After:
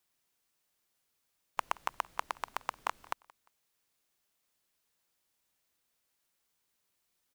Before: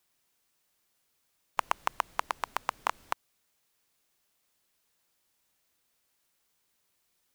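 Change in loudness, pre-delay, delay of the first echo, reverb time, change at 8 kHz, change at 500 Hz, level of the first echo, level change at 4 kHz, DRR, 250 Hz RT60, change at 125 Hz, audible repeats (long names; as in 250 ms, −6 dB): −4.5 dB, no reverb audible, 175 ms, no reverb audible, −4.5 dB, −4.5 dB, −23.5 dB, −4.5 dB, no reverb audible, no reverb audible, can't be measured, 2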